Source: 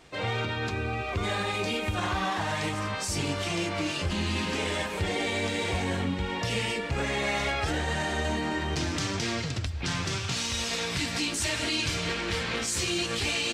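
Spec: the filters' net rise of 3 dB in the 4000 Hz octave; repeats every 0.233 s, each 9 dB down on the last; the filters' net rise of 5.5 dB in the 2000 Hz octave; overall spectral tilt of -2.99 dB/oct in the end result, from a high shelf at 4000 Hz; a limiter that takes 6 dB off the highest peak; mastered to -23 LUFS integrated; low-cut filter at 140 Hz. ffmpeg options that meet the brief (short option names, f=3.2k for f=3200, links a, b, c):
-af "highpass=140,equalizer=f=2k:t=o:g=7,highshelf=f=4k:g=-6.5,equalizer=f=4k:t=o:g=5,alimiter=limit=-19.5dB:level=0:latency=1,aecho=1:1:233|466|699|932:0.355|0.124|0.0435|0.0152,volume=4.5dB"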